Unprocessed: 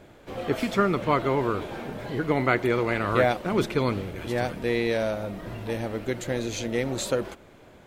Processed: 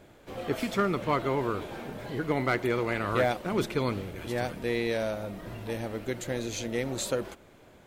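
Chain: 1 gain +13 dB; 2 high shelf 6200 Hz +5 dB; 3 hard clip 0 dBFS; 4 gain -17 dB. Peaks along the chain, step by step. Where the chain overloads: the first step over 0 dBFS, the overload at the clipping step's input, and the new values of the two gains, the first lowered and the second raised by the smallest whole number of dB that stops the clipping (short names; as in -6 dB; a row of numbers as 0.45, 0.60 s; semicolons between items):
+6.0, +6.5, 0.0, -17.0 dBFS; step 1, 6.5 dB; step 1 +6 dB, step 4 -10 dB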